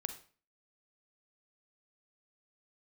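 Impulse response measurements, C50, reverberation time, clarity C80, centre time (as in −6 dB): 10.0 dB, 0.40 s, 15.0 dB, 10 ms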